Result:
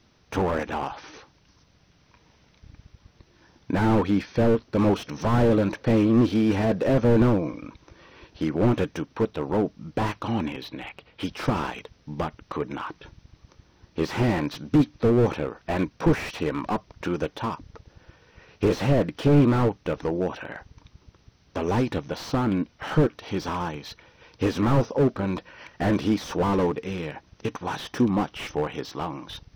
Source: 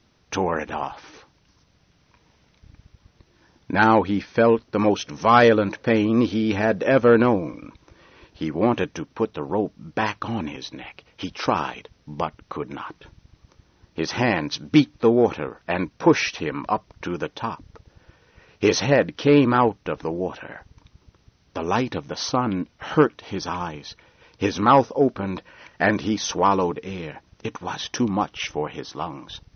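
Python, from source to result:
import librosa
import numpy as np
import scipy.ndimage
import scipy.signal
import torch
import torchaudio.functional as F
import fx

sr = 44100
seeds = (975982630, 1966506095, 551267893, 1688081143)

y = fx.lowpass(x, sr, hz=4500.0, slope=24, at=(10.48, 11.23))
y = fx.slew_limit(y, sr, full_power_hz=51.0)
y = y * 10.0 ** (1.0 / 20.0)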